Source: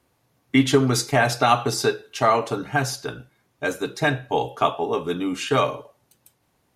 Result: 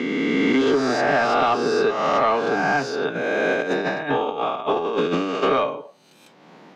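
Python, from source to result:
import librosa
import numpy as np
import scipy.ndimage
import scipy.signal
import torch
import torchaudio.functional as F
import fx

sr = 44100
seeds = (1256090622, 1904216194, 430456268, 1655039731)

y = fx.spec_swells(x, sr, rise_s=1.6)
y = scipy.signal.sosfilt(scipy.signal.cheby1(4, 1.0, 170.0, 'highpass', fs=sr, output='sos'), y)
y = fx.over_compress(y, sr, threshold_db=-25.0, ratio=-0.5, at=(3.14, 5.42), fade=0.02)
y = 10.0 ** (-9.0 / 20.0) * np.tanh(y / 10.0 ** (-9.0 / 20.0))
y = fx.air_absorb(y, sr, metres=190.0)
y = fx.band_squash(y, sr, depth_pct=70)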